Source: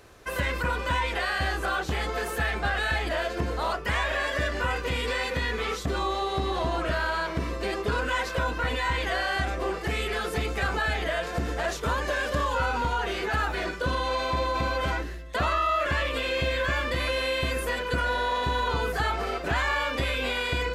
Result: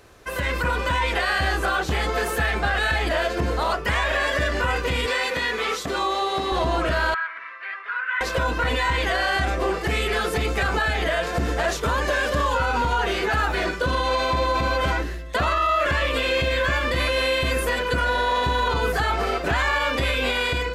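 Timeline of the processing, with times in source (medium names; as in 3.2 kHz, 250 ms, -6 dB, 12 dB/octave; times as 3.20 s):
5.06–6.52 s: high-pass 400 Hz 6 dB/octave
7.14–8.21 s: Butterworth band-pass 1.7 kHz, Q 1.7
whole clip: peak limiter -19 dBFS; level rider gain up to 4.5 dB; trim +1.5 dB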